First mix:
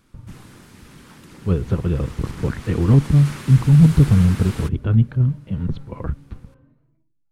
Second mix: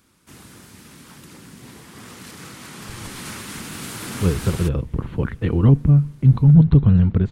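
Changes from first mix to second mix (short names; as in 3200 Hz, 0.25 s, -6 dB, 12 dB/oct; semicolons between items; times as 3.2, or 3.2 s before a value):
speech: entry +2.75 s; master: add high shelf 4700 Hz +7.5 dB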